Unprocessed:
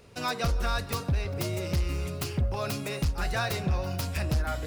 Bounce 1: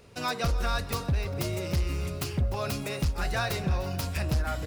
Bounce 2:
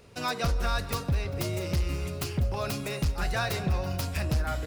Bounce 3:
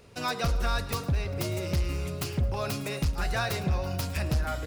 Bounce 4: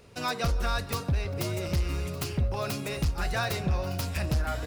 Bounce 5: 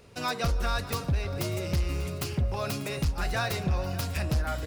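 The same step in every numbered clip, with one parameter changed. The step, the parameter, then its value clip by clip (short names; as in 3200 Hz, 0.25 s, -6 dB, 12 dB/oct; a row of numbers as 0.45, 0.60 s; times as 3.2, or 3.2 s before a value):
feedback echo, time: 0.3, 0.197, 0.108, 1.212, 0.592 s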